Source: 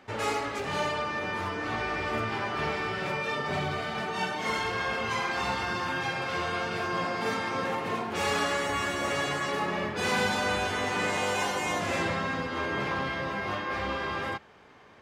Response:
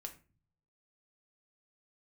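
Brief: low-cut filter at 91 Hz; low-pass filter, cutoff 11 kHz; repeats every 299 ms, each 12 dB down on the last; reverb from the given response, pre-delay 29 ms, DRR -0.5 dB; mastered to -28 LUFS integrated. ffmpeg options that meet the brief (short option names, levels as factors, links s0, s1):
-filter_complex "[0:a]highpass=91,lowpass=11000,aecho=1:1:299|598|897:0.251|0.0628|0.0157,asplit=2[s0][s1];[1:a]atrim=start_sample=2205,adelay=29[s2];[s1][s2]afir=irnorm=-1:irlink=0,volume=1.68[s3];[s0][s3]amix=inputs=2:normalize=0,volume=0.841"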